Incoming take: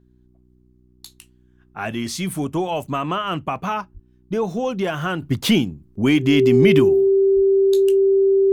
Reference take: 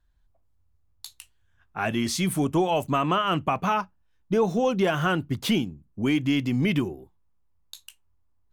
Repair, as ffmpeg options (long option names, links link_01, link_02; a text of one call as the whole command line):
ffmpeg -i in.wav -filter_complex "[0:a]bandreject=frequency=61.8:width_type=h:width=4,bandreject=frequency=123.6:width_type=h:width=4,bandreject=frequency=185.4:width_type=h:width=4,bandreject=frequency=247.2:width_type=h:width=4,bandreject=frequency=309:width_type=h:width=4,bandreject=frequency=370.8:width_type=h:width=4,bandreject=frequency=390:width=30,asplit=3[link_01][link_02][link_03];[link_01]afade=type=out:start_time=3.93:duration=0.02[link_04];[link_02]highpass=frequency=140:width=0.5412,highpass=frequency=140:width=1.3066,afade=type=in:start_time=3.93:duration=0.02,afade=type=out:start_time=4.05:duration=0.02[link_05];[link_03]afade=type=in:start_time=4.05:duration=0.02[link_06];[link_04][link_05][link_06]amix=inputs=3:normalize=0,asplit=3[link_07][link_08][link_09];[link_07]afade=type=out:start_time=7.35:duration=0.02[link_10];[link_08]highpass=frequency=140:width=0.5412,highpass=frequency=140:width=1.3066,afade=type=in:start_time=7.35:duration=0.02,afade=type=out:start_time=7.47:duration=0.02[link_11];[link_09]afade=type=in:start_time=7.47:duration=0.02[link_12];[link_10][link_11][link_12]amix=inputs=3:normalize=0,asetnsamples=nb_out_samples=441:pad=0,asendcmd='5.22 volume volume -7dB',volume=0dB" out.wav